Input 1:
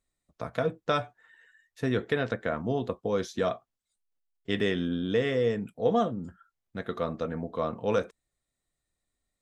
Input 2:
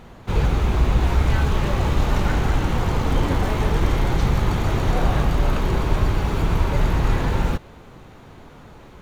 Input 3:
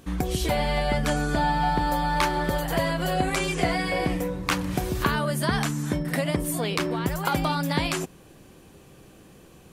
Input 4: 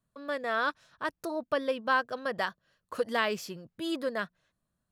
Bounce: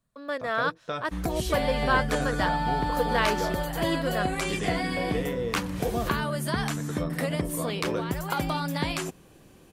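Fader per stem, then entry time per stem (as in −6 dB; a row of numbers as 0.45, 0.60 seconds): −6.0 dB, muted, −3.5 dB, +2.0 dB; 0.00 s, muted, 1.05 s, 0.00 s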